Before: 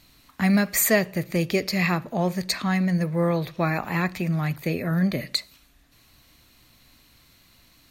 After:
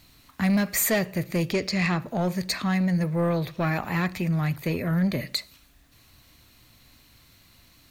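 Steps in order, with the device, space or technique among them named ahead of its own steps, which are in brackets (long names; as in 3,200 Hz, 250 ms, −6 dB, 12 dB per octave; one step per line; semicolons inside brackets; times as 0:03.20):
0:01.52–0:02.00: low-pass filter 8,200 Hz 24 dB per octave
open-reel tape (soft clipping −17.5 dBFS, distortion −15 dB; parametric band 92 Hz +4.5 dB 0.94 octaves; white noise bed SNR 44 dB)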